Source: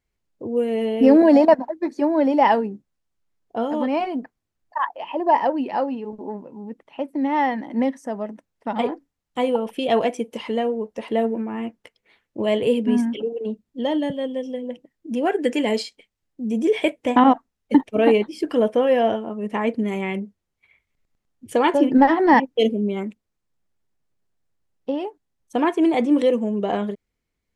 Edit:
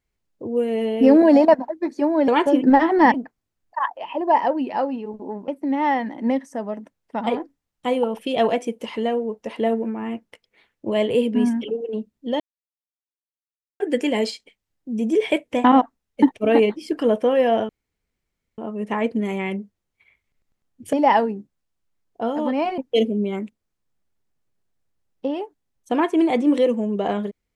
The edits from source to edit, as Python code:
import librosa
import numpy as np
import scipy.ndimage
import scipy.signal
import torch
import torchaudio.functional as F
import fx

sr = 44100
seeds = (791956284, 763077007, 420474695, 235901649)

y = fx.edit(x, sr, fx.swap(start_s=2.28, length_s=1.85, other_s=21.56, other_length_s=0.86),
    fx.cut(start_s=6.47, length_s=0.53),
    fx.silence(start_s=13.92, length_s=1.4),
    fx.insert_room_tone(at_s=19.21, length_s=0.89), tone=tone)